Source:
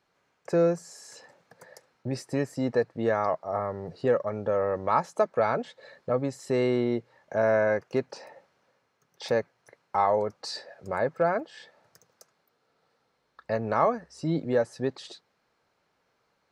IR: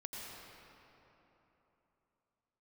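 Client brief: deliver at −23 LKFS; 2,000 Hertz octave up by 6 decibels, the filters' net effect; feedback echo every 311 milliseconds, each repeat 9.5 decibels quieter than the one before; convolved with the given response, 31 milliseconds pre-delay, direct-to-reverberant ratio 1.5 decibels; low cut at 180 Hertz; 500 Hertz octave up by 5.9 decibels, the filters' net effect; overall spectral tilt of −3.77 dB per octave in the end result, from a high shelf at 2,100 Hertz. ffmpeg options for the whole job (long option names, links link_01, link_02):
-filter_complex "[0:a]highpass=180,equalizer=frequency=500:width_type=o:gain=6.5,equalizer=frequency=2000:width_type=o:gain=5.5,highshelf=frequency=2100:gain=3.5,aecho=1:1:311|622|933|1244:0.335|0.111|0.0365|0.012,asplit=2[link_01][link_02];[1:a]atrim=start_sample=2205,adelay=31[link_03];[link_02][link_03]afir=irnorm=-1:irlink=0,volume=-0.5dB[link_04];[link_01][link_04]amix=inputs=2:normalize=0,volume=-1.5dB"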